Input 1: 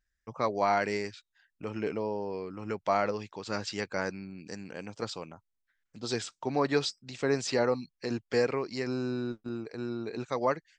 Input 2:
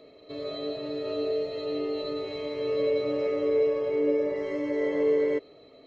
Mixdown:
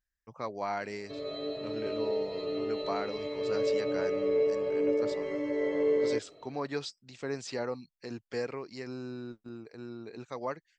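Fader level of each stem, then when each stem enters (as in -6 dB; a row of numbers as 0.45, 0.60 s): -7.5, -3.0 dB; 0.00, 0.80 s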